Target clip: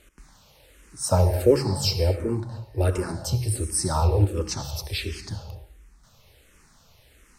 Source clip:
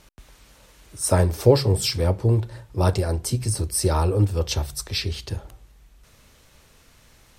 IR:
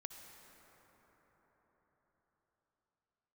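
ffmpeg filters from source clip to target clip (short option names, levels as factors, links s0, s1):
-filter_complex "[0:a]asettb=1/sr,asplit=3[s0][s1][s2];[s0]atrim=end=1.054[s3];[s1]atrim=start=1.05:end=3.12,asetpts=PTS-STARTPTS,afade=t=in:d=0.004:c=qsin,afade=t=out:st=2.066:d=0.004:c=qsin,bandreject=f=3400:w=7.4[s4];[s2]atrim=start=3.116[s5];[s3][s4]acrossfade=d=0.004:c1=hsin:c2=qsin[s6];[s6][s5]acrossfade=d=0.004:c1=qsin:c2=hsin[s7];[1:a]atrim=start_sample=2205,afade=t=out:st=0.31:d=0.01,atrim=end_sample=14112[s8];[s7][s8]afir=irnorm=-1:irlink=0,asplit=2[s9][s10];[s10]afreqshift=-1.4[s11];[s9][s11]amix=inputs=2:normalize=1,volume=1.88"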